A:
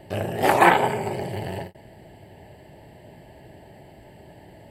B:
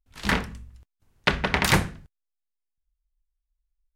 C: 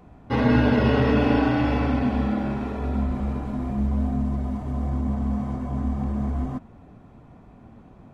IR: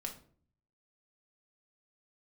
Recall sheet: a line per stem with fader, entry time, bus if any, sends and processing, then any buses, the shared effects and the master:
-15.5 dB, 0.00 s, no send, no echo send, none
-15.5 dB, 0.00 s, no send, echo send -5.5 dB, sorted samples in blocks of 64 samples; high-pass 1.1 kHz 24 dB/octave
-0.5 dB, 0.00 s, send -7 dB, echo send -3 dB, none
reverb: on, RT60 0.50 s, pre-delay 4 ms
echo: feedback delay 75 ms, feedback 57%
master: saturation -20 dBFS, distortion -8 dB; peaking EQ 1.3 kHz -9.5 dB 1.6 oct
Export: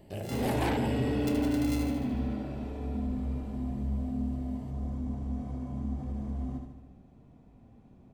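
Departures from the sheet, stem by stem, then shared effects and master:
stem A -15.5 dB -> -8.5 dB; stem C -0.5 dB -> -11.0 dB

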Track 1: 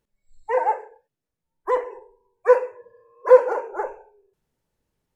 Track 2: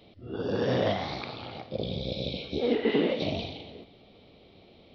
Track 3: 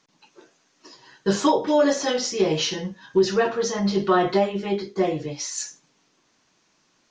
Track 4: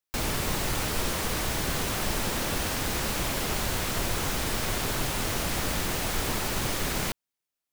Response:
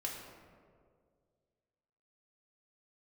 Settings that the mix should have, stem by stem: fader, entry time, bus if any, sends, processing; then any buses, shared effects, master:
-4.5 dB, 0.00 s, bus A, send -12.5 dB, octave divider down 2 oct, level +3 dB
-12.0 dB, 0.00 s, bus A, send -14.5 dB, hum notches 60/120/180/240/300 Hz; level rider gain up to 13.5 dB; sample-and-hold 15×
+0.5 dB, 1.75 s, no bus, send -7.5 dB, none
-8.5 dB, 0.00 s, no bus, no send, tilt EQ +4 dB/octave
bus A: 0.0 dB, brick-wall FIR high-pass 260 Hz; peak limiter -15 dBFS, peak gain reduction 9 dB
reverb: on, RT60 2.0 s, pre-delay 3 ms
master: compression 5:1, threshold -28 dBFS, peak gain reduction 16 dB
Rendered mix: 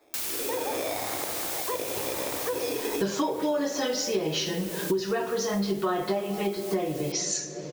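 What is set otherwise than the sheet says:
stem 2 -12.0 dB -> -5.5 dB; stem 3 +0.5 dB -> +12.0 dB

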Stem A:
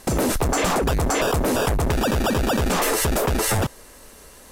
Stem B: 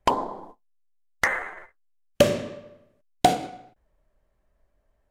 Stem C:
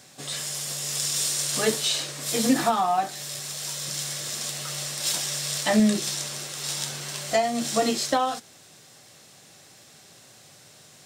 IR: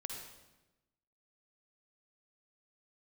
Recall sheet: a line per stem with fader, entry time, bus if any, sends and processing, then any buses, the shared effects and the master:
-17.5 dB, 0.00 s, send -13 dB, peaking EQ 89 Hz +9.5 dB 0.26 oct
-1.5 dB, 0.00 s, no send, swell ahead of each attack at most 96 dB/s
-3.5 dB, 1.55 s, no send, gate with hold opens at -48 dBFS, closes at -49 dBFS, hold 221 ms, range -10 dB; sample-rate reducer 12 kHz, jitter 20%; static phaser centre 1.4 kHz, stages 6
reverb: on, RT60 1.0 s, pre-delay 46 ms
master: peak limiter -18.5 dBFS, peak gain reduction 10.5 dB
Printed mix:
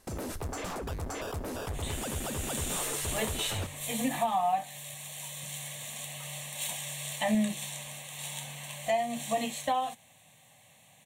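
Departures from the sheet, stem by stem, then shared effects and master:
stem B: muted; stem C: missing sample-rate reducer 12 kHz, jitter 20%

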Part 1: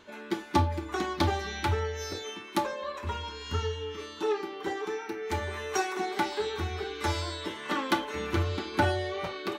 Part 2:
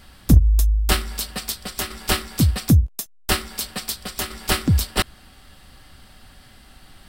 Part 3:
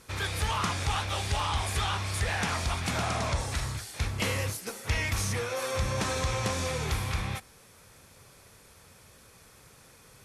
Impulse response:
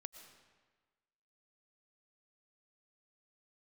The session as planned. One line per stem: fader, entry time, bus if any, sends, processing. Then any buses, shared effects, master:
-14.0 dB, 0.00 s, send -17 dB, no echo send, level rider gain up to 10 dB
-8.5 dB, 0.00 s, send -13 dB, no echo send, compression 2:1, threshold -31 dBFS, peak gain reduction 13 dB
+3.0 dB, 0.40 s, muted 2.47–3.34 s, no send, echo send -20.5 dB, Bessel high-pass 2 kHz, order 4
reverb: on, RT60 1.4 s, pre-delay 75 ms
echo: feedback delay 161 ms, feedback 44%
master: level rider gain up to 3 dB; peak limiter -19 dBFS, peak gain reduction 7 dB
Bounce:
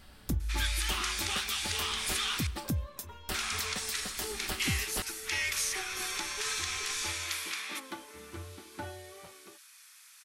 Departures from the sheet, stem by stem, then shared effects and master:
stem 1 -14.0 dB -> -25.0 dB; master: missing level rider gain up to 3 dB

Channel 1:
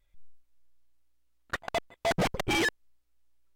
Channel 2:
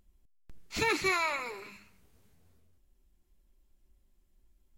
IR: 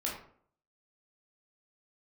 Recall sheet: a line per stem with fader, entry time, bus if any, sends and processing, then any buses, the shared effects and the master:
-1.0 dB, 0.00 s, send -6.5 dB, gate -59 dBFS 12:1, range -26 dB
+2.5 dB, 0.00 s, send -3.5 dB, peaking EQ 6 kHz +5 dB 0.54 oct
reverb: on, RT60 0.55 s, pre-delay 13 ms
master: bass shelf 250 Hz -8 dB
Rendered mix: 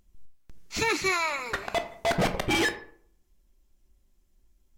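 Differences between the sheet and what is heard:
stem 2: send off; master: missing bass shelf 250 Hz -8 dB

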